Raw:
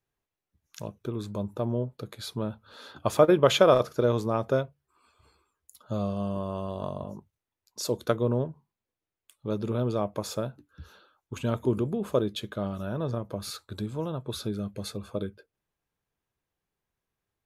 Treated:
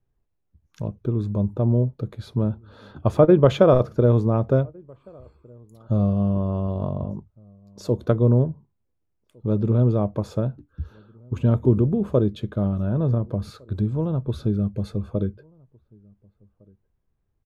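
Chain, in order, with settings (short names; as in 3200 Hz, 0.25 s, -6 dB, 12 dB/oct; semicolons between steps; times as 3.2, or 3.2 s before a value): tilt -4 dB/oct; outdoor echo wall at 250 m, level -29 dB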